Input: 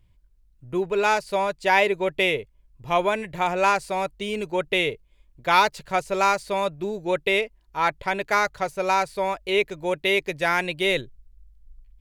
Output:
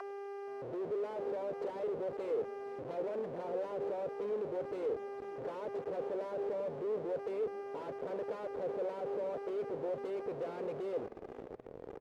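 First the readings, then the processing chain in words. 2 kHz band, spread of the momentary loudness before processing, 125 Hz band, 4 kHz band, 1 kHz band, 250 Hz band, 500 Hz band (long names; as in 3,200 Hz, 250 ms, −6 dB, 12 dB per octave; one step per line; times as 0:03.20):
−30.0 dB, 8 LU, −15.5 dB, below −30 dB, −22.0 dB, −13.0 dB, −10.0 dB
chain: noise reduction from a noise print of the clip's start 15 dB
downward compressor 4 to 1, threshold −34 dBFS, peak gain reduction 17.5 dB
wrap-around overflow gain 25.5 dB
hum with harmonics 400 Hz, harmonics 8, −51 dBFS −5 dB per octave
comparator with hysteresis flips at −46 dBFS
on a send: echo with shifted repeats 473 ms, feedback 48%, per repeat −140 Hz, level −15 dB
on the sum: envelope filter 480–2,000 Hz, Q 4, down, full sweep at −41.5 dBFS
level +8 dB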